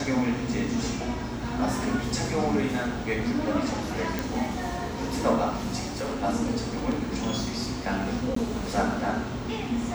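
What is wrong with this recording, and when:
4.19 pop
5.82–6.24 clipped -27 dBFS
8.35–8.36 gap 14 ms

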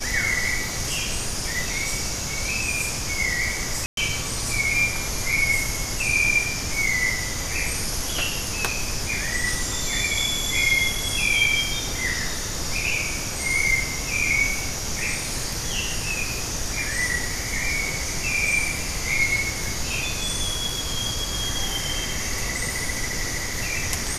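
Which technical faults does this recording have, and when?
3.86–3.97 gap 0.112 s

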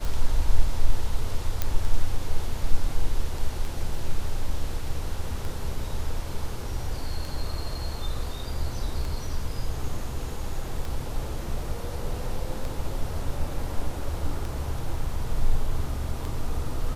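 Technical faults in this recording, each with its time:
tick 33 1/3 rpm
1.62 pop -10 dBFS

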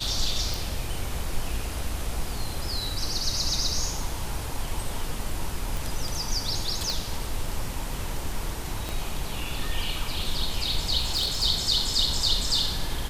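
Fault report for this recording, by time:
0.54 pop
5.77 pop
6.9 pop
8.89 pop
11–11.44 clipped -21 dBFS

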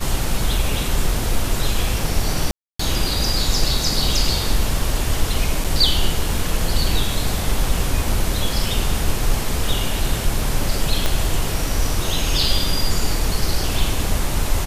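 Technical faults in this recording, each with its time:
2.51–2.79 gap 0.284 s
5.64–5.65 gap 6 ms
11.06 pop -4 dBFS

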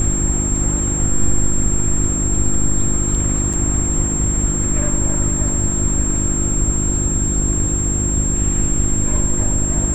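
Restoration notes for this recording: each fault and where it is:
hum 50 Hz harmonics 7 -22 dBFS
tone 7500 Hz -20 dBFS
3.53–3.54 gap 6 ms

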